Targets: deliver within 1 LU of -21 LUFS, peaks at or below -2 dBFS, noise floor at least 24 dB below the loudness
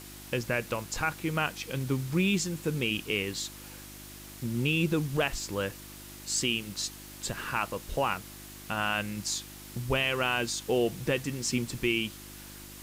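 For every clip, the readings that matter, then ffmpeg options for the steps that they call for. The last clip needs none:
hum 50 Hz; highest harmonic 350 Hz; hum level -47 dBFS; noise floor -46 dBFS; noise floor target -55 dBFS; loudness -30.5 LUFS; peak level -14.0 dBFS; loudness target -21.0 LUFS
-> -af "bandreject=f=50:t=h:w=4,bandreject=f=100:t=h:w=4,bandreject=f=150:t=h:w=4,bandreject=f=200:t=h:w=4,bandreject=f=250:t=h:w=4,bandreject=f=300:t=h:w=4,bandreject=f=350:t=h:w=4"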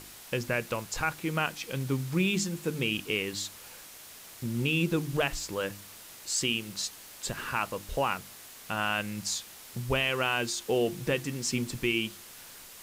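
hum not found; noise floor -49 dBFS; noise floor target -55 dBFS
-> -af "afftdn=nr=6:nf=-49"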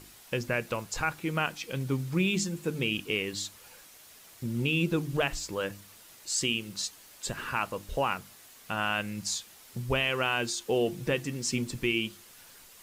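noise floor -54 dBFS; noise floor target -55 dBFS
-> -af "afftdn=nr=6:nf=-54"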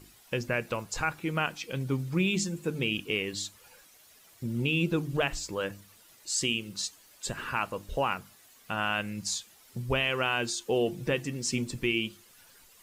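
noise floor -58 dBFS; loudness -31.0 LUFS; peak level -14.5 dBFS; loudness target -21.0 LUFS
-> -af "volume=3.16"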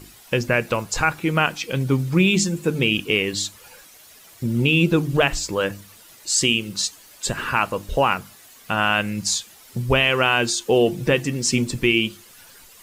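loudness -21.0 LUFS; peak level -4.5 dBFS; noise floor -48 dBFS

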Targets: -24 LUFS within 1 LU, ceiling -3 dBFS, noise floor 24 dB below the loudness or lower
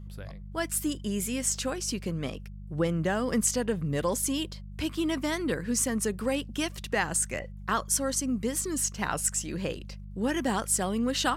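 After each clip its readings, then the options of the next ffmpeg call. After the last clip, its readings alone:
hum 50 Hz; highest harmonic 200 Hz; hum level -39 dBFS; loudness -29.5 LUFS; peak level -12.5 dBFS; loudness target -24.0 LUFS
-> -af "bandreject=f=50:t=h:w=4,bandreject=f=100:t=h:w=4,bandreject=f=150:t=h:w=4,bandreject=f=200:t=h:w=4"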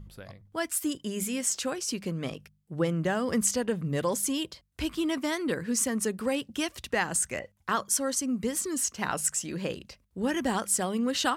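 hum not found; loudness -29.5 LUFS; peak level -13.0 dBFS; loudness target -24.0 LUFS
-> -af "volume=1.88"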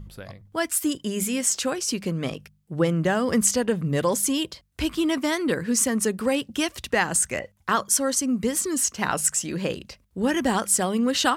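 loudness -24.0 LUFS; peak level -7.5 dBFS; noise floor -61 dBFS

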